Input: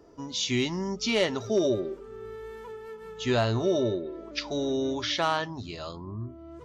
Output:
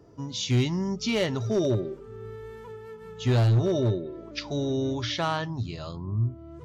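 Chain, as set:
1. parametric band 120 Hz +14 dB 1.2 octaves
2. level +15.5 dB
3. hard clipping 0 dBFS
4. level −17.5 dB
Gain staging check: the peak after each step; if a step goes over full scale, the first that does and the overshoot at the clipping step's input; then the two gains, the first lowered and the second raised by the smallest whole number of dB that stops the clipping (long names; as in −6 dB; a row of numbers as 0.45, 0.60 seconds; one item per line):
−8.0, +7.5, 0.0, −17.5 dBFS
step 2, 7.5 dB
step 2 +7.5 dB, step 4 −9.5 dB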